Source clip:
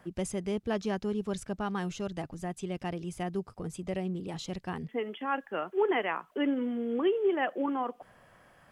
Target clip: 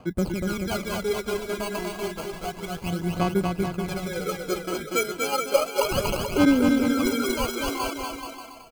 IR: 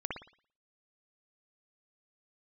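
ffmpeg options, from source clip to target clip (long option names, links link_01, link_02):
-filter_complex "[0:a]asettb=1/sr,asplit=3[link_01][link_02][link_03];[link_01]atrim=end=4.064[link_04];[link_02]atrim=start=4.06:end=5.56,asetpts=PTS-STARTPTS,afade=type=in:duration=0.004:curve=qsin,afade=type=out:start_time=1.496:duration=0.004:curve=qsin,lowpass=frequency=530:width_type=q:width=4.9[link_05];[link_03]atrim=start=5.556[link_06];[link_04][link_05]acrossfade=duration=0.004:curve1=hsin:curve2=qsin[link_07];[link_07][link_06]acrossfade=duration=0.004:curve1=qsin:curve2=hsin,acrusher=samples=24:mix=1:aa=0.000001,aphaser=in_gain=1:out_gain=1:delay=3.1:decay=0.72:speed=0.31:type=sinusoidal,aecho=1:1:240|432|585.6|708.5|806.8:0.631|0.398|0.251|0.158|0.1"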